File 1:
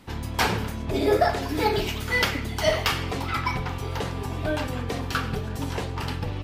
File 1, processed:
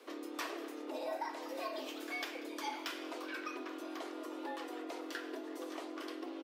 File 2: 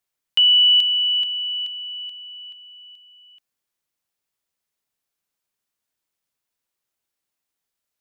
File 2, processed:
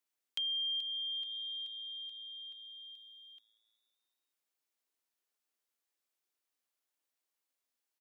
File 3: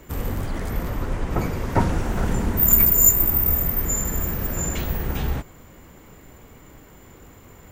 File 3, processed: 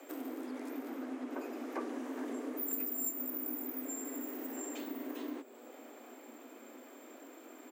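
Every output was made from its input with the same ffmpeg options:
-filter_complex "[0:a]afreqshift=230,asplit=6[s0][s1][s2][s3][s4][s5];[s1]adelay=188,afreqshift=110,volume=0.075[s6];[s2]adelay=376,afreqshift=220,volume=0.0457[s7];[s3]adelay=564,afreqshift=330,volume=0.0279[s8];[s4]adelay=752,afreqshift=440,volume=0.017[s9];[s5]adelay=940,afreqshift=550,volume=0.0104[s10];[s0][s6][s7][s8][s9][s10]amix=inputs=6:normalize=0,acompressor=threshold=0.00794:ratio=2,volume=0.501"

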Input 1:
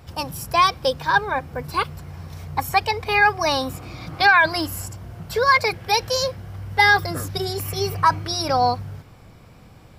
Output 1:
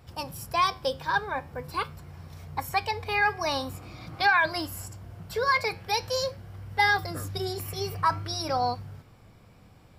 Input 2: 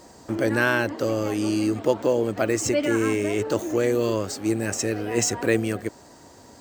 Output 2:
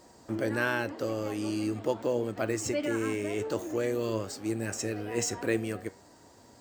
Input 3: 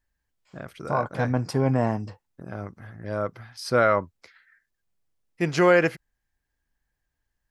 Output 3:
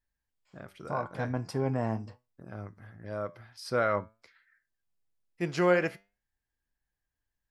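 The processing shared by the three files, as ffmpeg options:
-af "bandreject=f=6200:w=26,flanger=delay=8:depth=3.7:regen=81:speed=0.45:shape=triangular,volume=0.708"

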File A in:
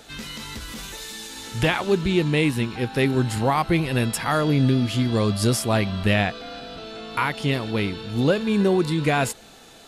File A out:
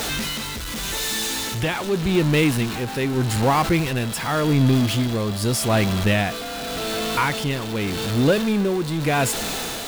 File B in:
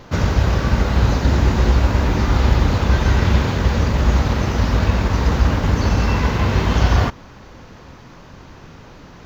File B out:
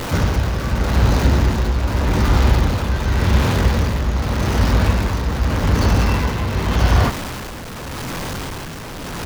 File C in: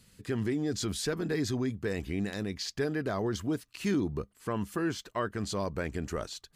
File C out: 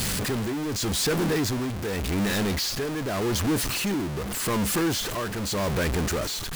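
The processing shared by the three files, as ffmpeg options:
-af "aeval=exprs='val(0)+0.5*0.0891*sgn(val(0))':c=same,tremolo=f=0.85:d=0.49"

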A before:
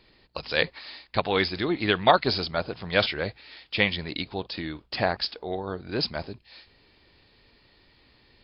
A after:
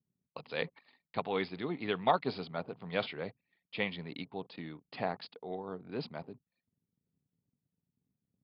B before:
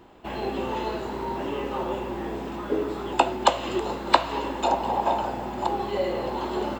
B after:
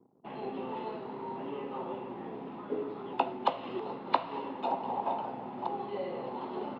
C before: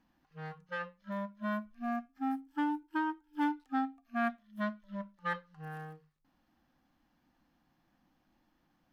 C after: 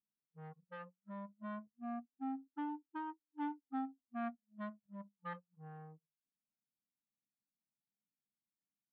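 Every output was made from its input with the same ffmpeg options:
-af "aemphasis=mode=reproduction:type=riaa,anlmdn=0.158,highpass=f=190:w=0.5412,highpass=f=190:w=1.3066,equalizer=f=210:t=q:w=4:g=-7,equalizer=f=330:t=q:w=4:g=-10,equalizer=f=580:t=q:w=4:g=-5,equalizer=f=1600:t=q:w=4:g=-6,lowpass=f=4400:w=0.5412,lowpass=f=4400:w=1.3066,volume=0.398"

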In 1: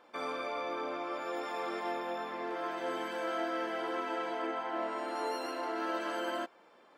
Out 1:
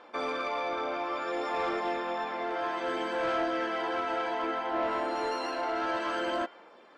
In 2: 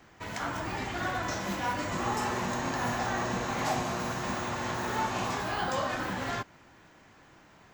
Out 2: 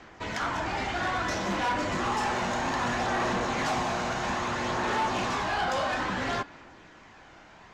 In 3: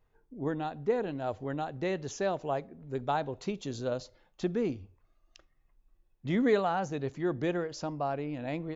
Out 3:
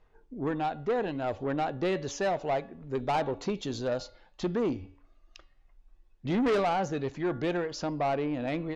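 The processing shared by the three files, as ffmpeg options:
-af "lowpass=6000,equalizer=f=120:w=0.91:g=-6.5,bandreject=f=283.9:t=h:w=4,bandreject=f=567.8:t=h:w=4,bandreject=f=851.7:t=h:w=4,bandreject=f=1135.6:t=h:w=4,bandreject=f=1419.5:t=h:w=4,bandreject=f=1703.4:t=h:w=4,bandreject=f=1987.3:t=h:w=4,bandreject=f=2271.2:t=h:w=4,bandreject=f=2555.1:t=h:w=4,bandreject=f=2839:t=h:w=4,bandreject=f=3122.9:t=h:w=4,bandreject=f=3406.8:t=h:w=4,bandreject=f=3690.7:t=h:w=4,bandreject=f=3974.6:t=h:w=4,bandreject=f=4258.5:t=h:w=4,bandreject=f=4542.4:t=h:w=4,bandreject=f=4826.3:t=h:w=4,aphaser=in_gain=1:out_gain=1:delay=1.4:decay=0.25:speed=0.61:type=sinusoidal,asoftclip=type=tanh:threshold=0.0355,volume=2"

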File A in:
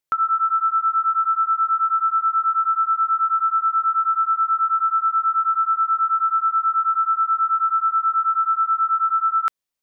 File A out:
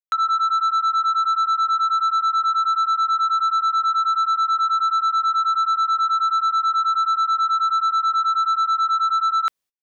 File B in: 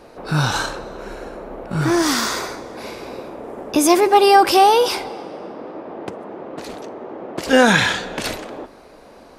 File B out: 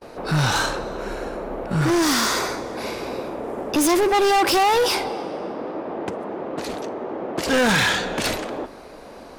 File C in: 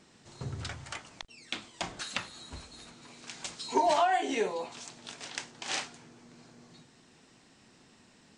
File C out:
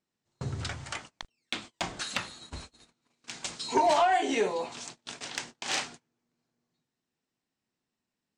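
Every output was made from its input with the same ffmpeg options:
-af "agate=range=0.0316:threshold=0.00447:ratio=16:detection=peak,asoftclip=type=tanh:threshold=0.112,volume=1.5"

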